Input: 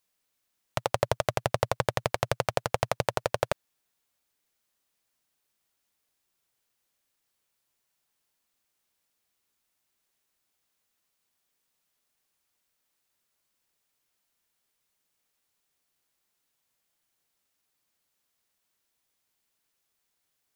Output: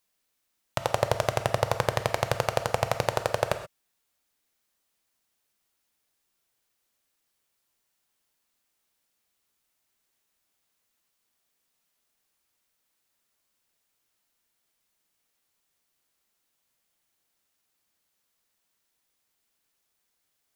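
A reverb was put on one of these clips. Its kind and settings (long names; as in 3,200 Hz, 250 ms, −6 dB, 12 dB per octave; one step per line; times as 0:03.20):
reverb whose tail is shaped and stops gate 150 ms flat, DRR 8 dB
level +1 dB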